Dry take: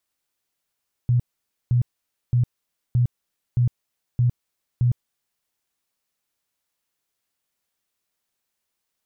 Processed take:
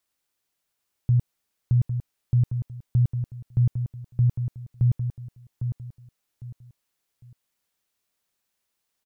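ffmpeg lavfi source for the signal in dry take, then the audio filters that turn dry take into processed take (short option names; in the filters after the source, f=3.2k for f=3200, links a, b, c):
-f lavfi -i "aevalsrc='0.178*sin(2*PI*122*mod(t,0.62))*lt(mod(t,0.62),13/122)':d=4.34:s=44100"
-af "aecho=1:1:804|1608|2412:0.398|0.115|0.0335"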